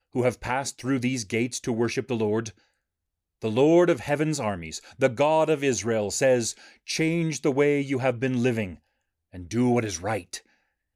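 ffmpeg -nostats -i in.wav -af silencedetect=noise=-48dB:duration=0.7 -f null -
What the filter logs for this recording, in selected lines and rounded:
silence_start: 2.51
silence_end: 3.42 | silence_duration: 0.90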